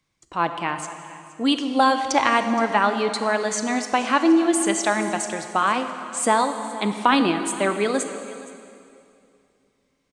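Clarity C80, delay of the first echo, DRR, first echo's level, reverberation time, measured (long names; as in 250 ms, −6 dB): 9.0 dB, 470 ms, 7.5 dB, −19.0 dB, 2.5 s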